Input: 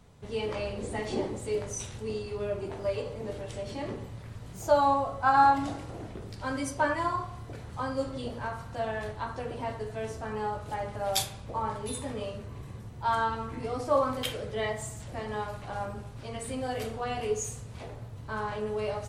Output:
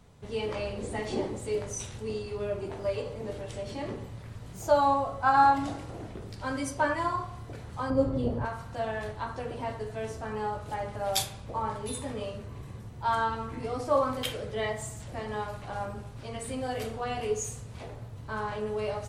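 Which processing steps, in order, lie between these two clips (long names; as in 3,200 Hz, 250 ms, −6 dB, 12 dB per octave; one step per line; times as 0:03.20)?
0:07.90–0:08.45: tilt shelving filter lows +9 dB, about 1,200 Hz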